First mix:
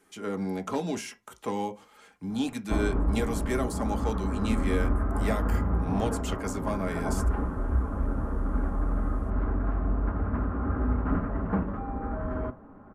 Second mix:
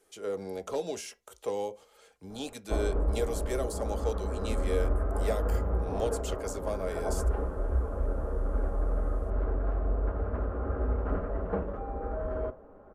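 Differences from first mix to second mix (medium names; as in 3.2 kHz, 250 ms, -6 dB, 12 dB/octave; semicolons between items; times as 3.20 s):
speech: send -6.0 dB; master: add graphic EQ 125/250/500/1000/2000 Hz -9/-10/+9/-6/-5 dB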